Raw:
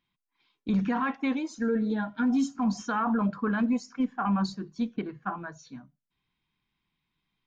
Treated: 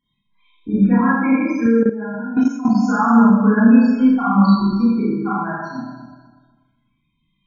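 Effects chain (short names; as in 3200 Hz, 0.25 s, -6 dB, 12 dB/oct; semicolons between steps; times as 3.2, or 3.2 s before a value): regenerating reverse delay 0.123 s, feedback 57%, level -8.5 dB; loudest bins only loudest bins 16; in parallel at -1 dB: compressor 8:1, threshold -34 dBFS, peak gain reduction 13.5 dB; on the sum: Schroeder reverb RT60 0.89 s, combs from 27 ms, DRR -9 dB; 1.66–2.75 level quantiser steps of 13 dB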